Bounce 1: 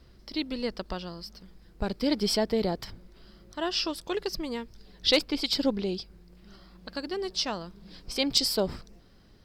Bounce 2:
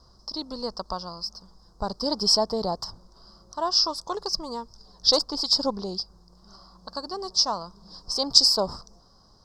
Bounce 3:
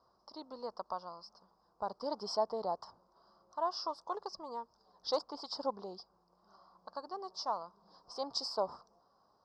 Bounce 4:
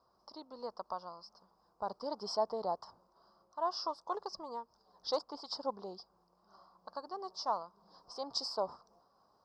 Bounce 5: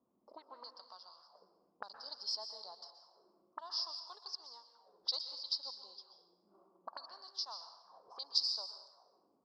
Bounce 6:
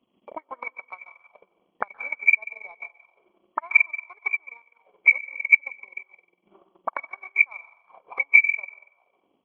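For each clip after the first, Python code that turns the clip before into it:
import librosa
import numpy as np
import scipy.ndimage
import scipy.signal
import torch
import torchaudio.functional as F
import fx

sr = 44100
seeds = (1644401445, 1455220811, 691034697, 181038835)

y1 = fx.curve_eq(x, sr, hz=(180.0, 340.0, 1100.0, 2400.0, 5100.0, 13000.0), db=(0, -3, 13, -25, 14, -5))
y1 = y1 * librosa.db_to_amplitude(-2.0)
y2 = fx.bandpass_q(y1, sr, hz=840.0, q=0.97)
y2 = y2 * librosa.db_to_amplitude(-6.0)
y3 = fx.am_noise(y2, sr, seeds[0], hz=5.7, depth_pct=55)
y3 = y3 * librosa.db_to_amplitude(2.0)
y4 = fx.auto_wah(y3, sr, base_hz=230.0, top_hz=4300.0, q=3.9, full_db=-41.5, direction='up')
y4 = fx.rev_plate(y4, sr, seeds[1], rt60_s=1.0, hf_ratio=0.75, predelay_ms=110, drr_db=7.5)
y4 = y4 * librosa.db_to_amplitude(8.5)
y5 = fx.freq_compress(y4, sr, knee_hz=1800.0, ratio=4.0)
y5 = fx.transient(y5, sr, attack_db=12, sustain_db=-11)
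y5 = y5 * librosa.db_to_amplitude(7.0)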